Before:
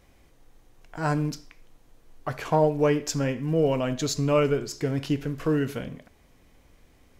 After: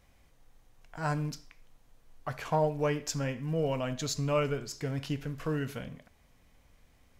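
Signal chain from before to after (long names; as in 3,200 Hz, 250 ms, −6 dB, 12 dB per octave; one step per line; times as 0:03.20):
parametric band 350 Hz −7.5 dB 0.82 octaves
level −4.5 dB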